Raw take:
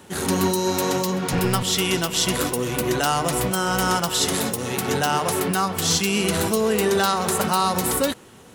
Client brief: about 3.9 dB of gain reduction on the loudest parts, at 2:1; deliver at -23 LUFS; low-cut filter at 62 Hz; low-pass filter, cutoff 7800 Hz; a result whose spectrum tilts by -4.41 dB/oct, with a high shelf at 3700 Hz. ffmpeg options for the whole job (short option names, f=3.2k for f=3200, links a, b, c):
-af "highpass=62,lowpass=7.8k,highshelf=f=3.7k:g=-6,acompressor=threshold=-24dB:ratio=2,volume=3dB"